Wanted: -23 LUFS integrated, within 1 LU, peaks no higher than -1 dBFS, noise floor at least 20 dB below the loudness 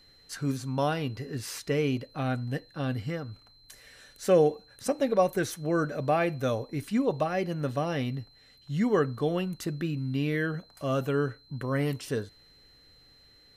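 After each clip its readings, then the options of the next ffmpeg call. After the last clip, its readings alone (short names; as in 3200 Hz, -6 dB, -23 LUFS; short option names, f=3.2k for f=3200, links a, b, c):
steady tone 4100 Hz; tone level -57 dBFS; loudness -29.5 LUFS; peak -11.5 dBFS; loudness target -23.0 LUFS
-> -af "bandreject=f=4.1k:w=30"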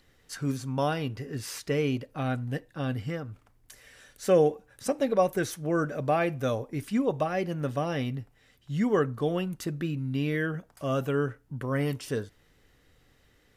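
steady tone none; loudness -29.5 LUFS; peak -11.5 dBFS; loudness target -23.0 LUFS
-> -af "volume=6.5dB"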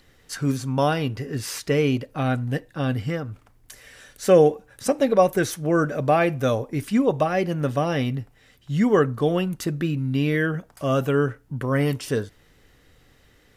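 loudness -23.0 LUFS; peak -5.0 dBFS; noise floor -58 dBFS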